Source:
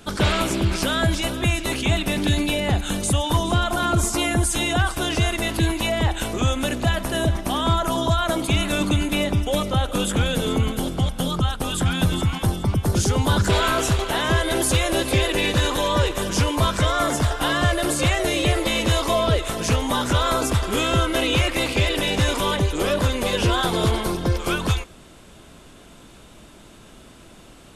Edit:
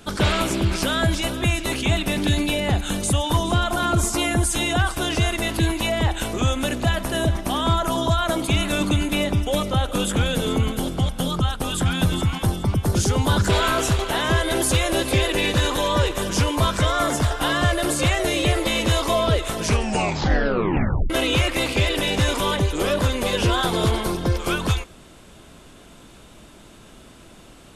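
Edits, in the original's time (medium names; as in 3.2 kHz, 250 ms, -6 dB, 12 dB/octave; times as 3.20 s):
19.61 s: tape stop 1.49 s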